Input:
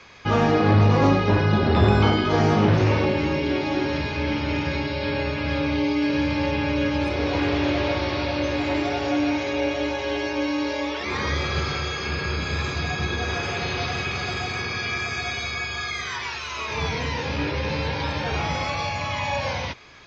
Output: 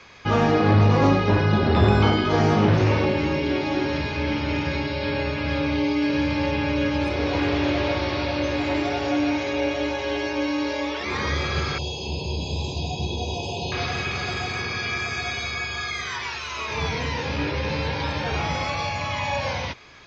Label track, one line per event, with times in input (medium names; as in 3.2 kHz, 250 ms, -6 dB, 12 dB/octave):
11.780000	13.720000	Chebyshev band-stop 990–2600 Hz, order 5